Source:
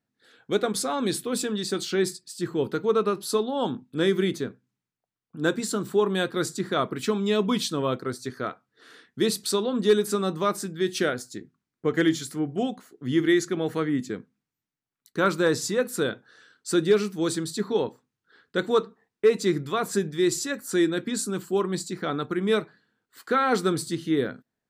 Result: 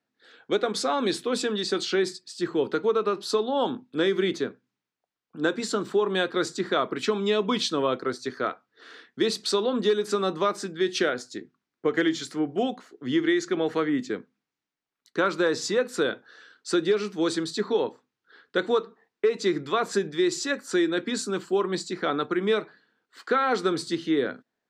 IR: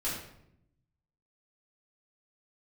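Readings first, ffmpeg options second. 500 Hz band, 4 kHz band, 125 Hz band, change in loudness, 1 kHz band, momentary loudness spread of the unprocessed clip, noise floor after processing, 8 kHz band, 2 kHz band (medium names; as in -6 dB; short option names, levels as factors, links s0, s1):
0.0 dB, +1.5 dB, -6.0 dB, -0.5 dB, +1.0 dB, 9 LU, under -85 dBFS, -4.0 dB, +1.0 dB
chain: -filter_complex "[0:a]acrossover=split=250 6600:gain=0.224 1 0.0794[s0][s1][s2];[s0][s1][s2]amix=inputs=3:normalize=0,acompressor=threshold=0.0708:ratio=6,volume=1.58"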